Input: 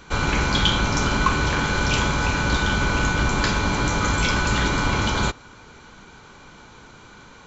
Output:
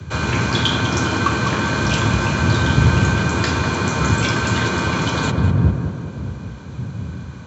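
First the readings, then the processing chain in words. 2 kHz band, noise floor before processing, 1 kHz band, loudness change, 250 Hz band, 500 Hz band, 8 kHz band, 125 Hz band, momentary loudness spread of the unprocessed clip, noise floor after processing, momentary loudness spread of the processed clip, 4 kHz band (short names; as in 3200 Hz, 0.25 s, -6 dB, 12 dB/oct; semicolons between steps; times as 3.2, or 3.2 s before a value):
+1.5 dB, -47 dBFS, +1.5 dB, +3.0 dB, +5.5 dB, +4.0 dB, n/a, +7.5 dB, 2 LU, -33 dBFS, 13 LU, +1.0 dB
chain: wind noise 89 Hz -24 dBFS; frequency shift +59 Hz; added harmonics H 2 -31 dB, 3 -28 dB, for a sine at -3 dBFS; on a send: tape echo 0.2 s, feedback 72%, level -5 dB, low-pass 1800 Hz; on the sum: gain +1.5 dB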